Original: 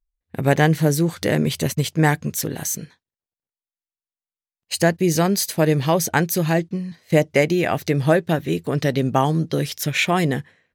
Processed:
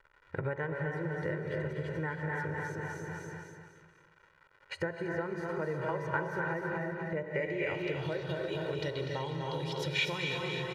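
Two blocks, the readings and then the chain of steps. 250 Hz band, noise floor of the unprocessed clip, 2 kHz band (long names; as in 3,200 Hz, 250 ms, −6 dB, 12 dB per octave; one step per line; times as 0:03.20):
−18.0 dB, below −85 dBFS, −10.5 dB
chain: repeating echo 246 ms, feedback 40%, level −6 dB
reverb whose tail is shaped and stops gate 360 ms rising, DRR 3 dB
dynamic equaliser 4,000 Hz, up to −4 dB, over −36 dBFS, Q 0.72
surface crackle 260 per second −43 dBFS
downward compressor 16 to 1, threshold −30 dBFS, peak gain reduction 21 dB
high-shelf EQ 8,600 Hz +11 dB
hum removal 60.94 Hz, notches 21
low-pass filter sweep 1,600 Hz → 3,700 Hz, 0:07.23–0:08.16
comb filter 2.1 ms, depth 87%
level −3 dB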